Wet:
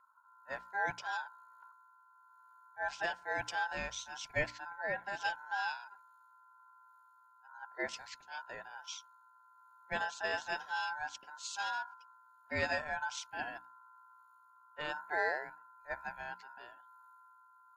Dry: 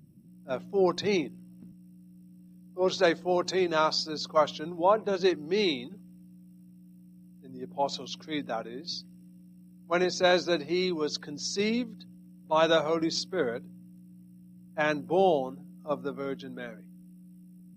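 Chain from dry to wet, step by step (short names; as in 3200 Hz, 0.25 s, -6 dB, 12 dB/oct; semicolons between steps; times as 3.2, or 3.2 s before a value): rotary speaker horn 1.1 Hz; ring modulator 1200 Hz; notches 60/120/180/240/300 Hz; gain -6 dB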